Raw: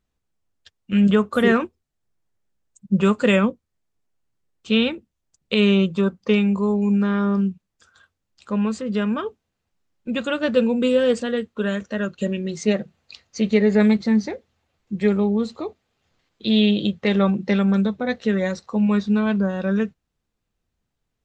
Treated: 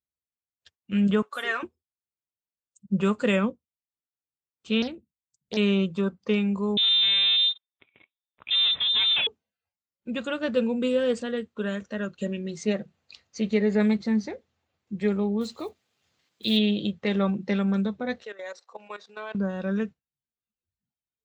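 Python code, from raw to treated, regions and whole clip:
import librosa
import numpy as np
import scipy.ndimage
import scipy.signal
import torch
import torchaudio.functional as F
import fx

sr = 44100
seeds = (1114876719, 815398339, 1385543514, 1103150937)

y = fx.chain(x, sr, fx.highpass(hz=910.0, slope=12),
    fx.comb(ms=7.1, depth=0.54), at=(1.22, 1.63))
y = fx.chain(y, sr, fx.peak_eq(hz=1600.0, db=-10.0, octaves=3.0),
    fx.doppler_dist(depth_ms=0.45), at=(4.82, 5.57))
y = fx.chain(y, sr, fx.highpass(hz=160.0, slope=12),
    fx.leveller(passes=3),
    fx.freq_invert(carrier_hz=3800), at=(6.77, 9.27))
y = fx.chain(y, sr, fx.block_float(bits=7),
    fx.high_shelf(hz=2200.0, db=9.0), at=(15.41, 16.59))
y = fx.chain(y, sr, fx.highpass(hz=480.0, slope=24),
    fx.level_steps(step_db=15), at=(18.23, 19.35))
y = fx.noise_reduce_blind(y, sr, reduce_db=17)
y = scipy.signal.sosfilt(scipy.signal.butter(2, 51.0, 'highpass', fs=sr, output='sos'), y)
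y = F.gain(torch.from_numpy(y), -6.0).numpy()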